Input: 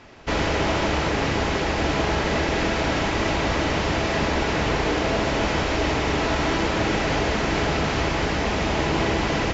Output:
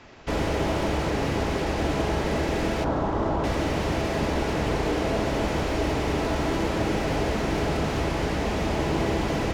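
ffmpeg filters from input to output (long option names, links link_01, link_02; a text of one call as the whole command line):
ffmpeg -i in.wav -filter_complex "[0:a]asettb=1/sr,asplit=3[link_01][link_02][link_03];[link_01]atrim=end=2.844[link_04];[link_02]atrim=start=2.84:end=3.44,asetpts=PTS-STARTPTS,afade=type=in:duration=0.004:curve=qsin,afade=type=out:start_time=0.596:duration=0.004:curve=qsin,highshelf=frequency=1700:width_type=q:width=1.5:gain=-13.5[link_05];[link_03]atrim=start=3.436[link_06];[link_04][link_05]acrossfade=duration=0.004:curve1=hsin:curve2=qsin[link_07];[link_07][link_06]acrossfade=duration=0.004:curve1=qsin:curve2=hsin,acrossover=split=480|800[link_08][link_09][link_10];[link_10]asoftclip=type=tanh:threshold=-31.5dB[link_11];[link_08][link_09][link_11]amix=inputs=3:normalize=0,volume=-1.5dB" out.wav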